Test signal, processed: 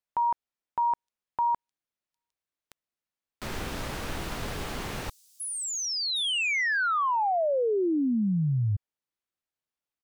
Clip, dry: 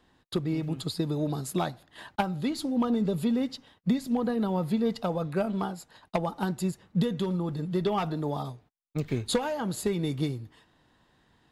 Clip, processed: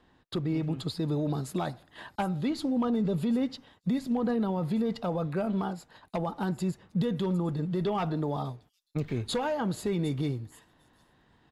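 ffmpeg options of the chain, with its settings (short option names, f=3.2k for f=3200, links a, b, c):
-filter_complex "[0:a]highshelf=f=5.4k:g=-11,acrossover=split=5700[a][b];[a]alimiter=limit=-23dB:level=0:latency=1:release=18[c];[b]aecho=1:1:757:0.299[d];[c][d]amix=inputs=2:normalize=0,volume=1.5dB"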